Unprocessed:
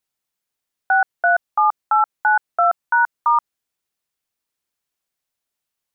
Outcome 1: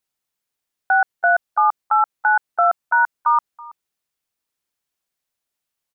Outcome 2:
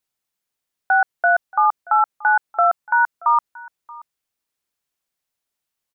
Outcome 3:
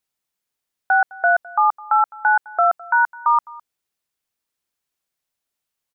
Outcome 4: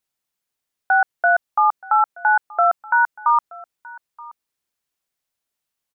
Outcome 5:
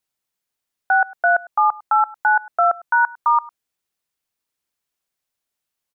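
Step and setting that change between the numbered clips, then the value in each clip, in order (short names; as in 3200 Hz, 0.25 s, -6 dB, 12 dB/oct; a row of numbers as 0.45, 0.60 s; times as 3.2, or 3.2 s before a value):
echo, time: 0.327, 0.629, 0.209, 0.926, 0.103 s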